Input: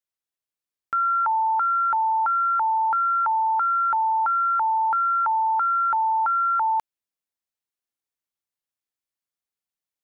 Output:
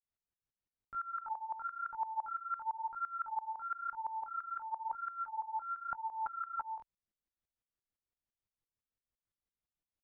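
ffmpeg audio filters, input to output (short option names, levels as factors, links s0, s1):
-af "alimiter=level_in=2.11:limit=0.0631:level=0:latency=1,volume=0.473,flanger=delay=18:depth=7.7:speed=0.97,aemphasis=mode=reproduction:type=riaa,aeval=exprs='val(0)*pow(10,-18*if(lt(mod(-5.9*n/s,1),2*abs(-5.9)/1000),1-mod(-5.9*n/s,1)/(2*abs(-5.9)/1000),(mod(-5.9*n/s,1)-2*abs(-5.9)/1000)/(1-2*abs(-5.9)/1000))/20)':c=same,volume=1.41"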